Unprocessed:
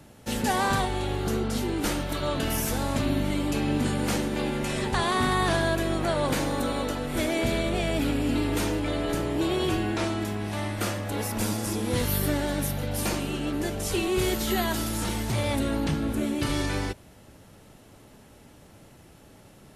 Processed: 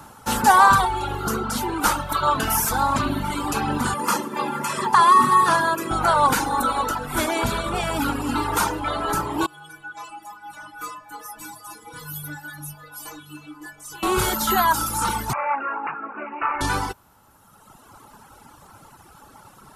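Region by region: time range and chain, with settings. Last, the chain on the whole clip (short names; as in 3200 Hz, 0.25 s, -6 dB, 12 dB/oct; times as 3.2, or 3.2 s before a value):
3.94–5.91 HPF 130 Hz 24 dB/oct + notch 3800 Hz, Q 10 + notch comb 750 Hz
9.46–14.03 metallic resonator 150 Hz, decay 0.59 s, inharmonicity 0.008 + echo 0.294 s -10 dB
15.33–16.61 HPF 550 Hz + air absorption 150 m + careless resampling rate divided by 8×, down none, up filtered
whole clip: band shelf 1100 Hz +14 dB 1.1 oct; reverb removal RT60 1.8 s; high shelf 5200 Hz +8.5 dB; gain +3 dB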